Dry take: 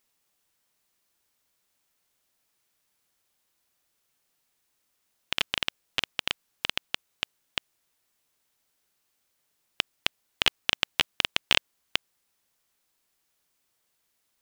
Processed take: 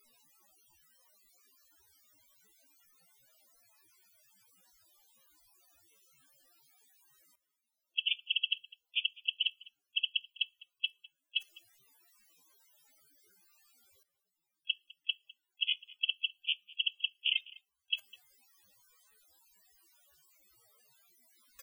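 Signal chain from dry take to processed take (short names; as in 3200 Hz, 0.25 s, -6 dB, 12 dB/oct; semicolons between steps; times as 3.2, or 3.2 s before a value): loudest bins only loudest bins 32; bell 15000 Hz +3.5 dB 0.37 oct; reverse; upward compressor, threshold -35 dBFS; reverse; time stretch by phase-locked vocoder 1.5×; level quantiser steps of 19 dB; echo 0.204 s -22 dB; on a send at -21.5 dB: reverb RT60 0.30 s, pre-delay 6 ms; on the sum: gain +8.5 dB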